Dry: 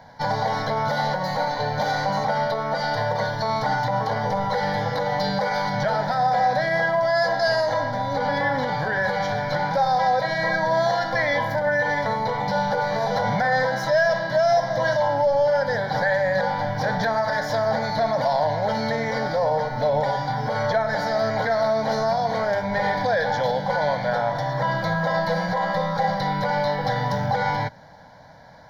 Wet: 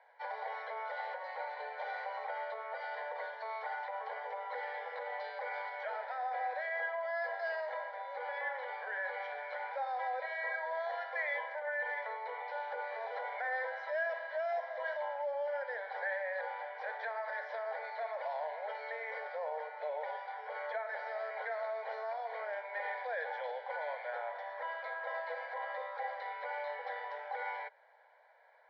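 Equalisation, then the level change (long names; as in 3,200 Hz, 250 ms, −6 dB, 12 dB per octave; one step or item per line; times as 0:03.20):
Butterworth high-pass 430 Hz 96 dB per octave
transistor ladder low-pass 2,800 Hz, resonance 55%
−7.5 dB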